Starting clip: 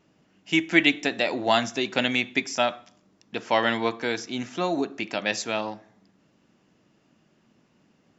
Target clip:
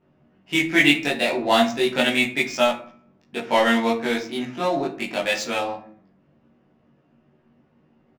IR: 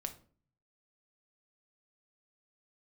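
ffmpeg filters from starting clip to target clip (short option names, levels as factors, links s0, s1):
-filter_complex "[0:a]asplit=2[s0][s1];[s1]adelay=13,volume=0.562[s2];[s0][s2]amix=inputs=2:normalize=0,adynamicsmooth=sensitivity=6.5:basefreq=2000,bandreject=f=164.4:t=h:w=4,bandreject=f=328.8:t=h:w=4,bandreject=f=493.2:t=h:w=4,bandreject=f=657.6:t=h:w=4,bandreject=f=822:t=h:w=4,bandreject=f=986.4:t=h:w=4,bandreject=f=1150.8:t=h:w=4,bandreject=f=1315.2:t=h:w=4,bandreject=f=1479.6:t=h:w=4,bandreject=f=1644:t=h:w=4,bandreject=f=1808.4:t=h:w=4,bandreject=f=1972.8:t=h:w=4,bandreject=f=2137.2:t=h:w=4,bandreject=f=2301.6:t=h:w=4,bandreject=f=2466:t=h:w=4,bandreject=f=2630.4:t=h:w=4,bandreject=f=2794.8:t=h:w=4,asplit=2[s3][s4];[1:a]atrim=start_sample=2205,adelay=21[s5];[s4][s5]afir=irnorm=-1:irlink=0,volume=1.78[s6];[s3][s6]amix=inputs=2:normalize=0,volume=0.75"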